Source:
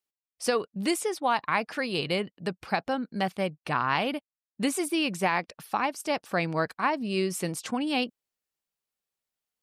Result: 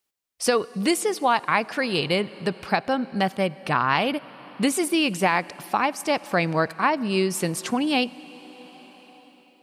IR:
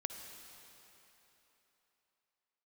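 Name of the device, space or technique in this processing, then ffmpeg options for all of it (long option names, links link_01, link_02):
ducked reverb: -filter_complex "[0:a]asplit=3[link_01][link_02][link_03];[1:a]atrim=start_sample=2205[link_04];[link_02][link_04]afir=irnorm=-1:irlink=0[link_05];[link_03]apad=whole_len=424316[link_06];[link_05][link_06]sidechaincompress=threshold=-35dB:ratio=4:attack=5.4:release=957,volume=0.5dB[link_07];[link_01][link_07]amix=inputs=2:normalize=0,volume=3.5dB"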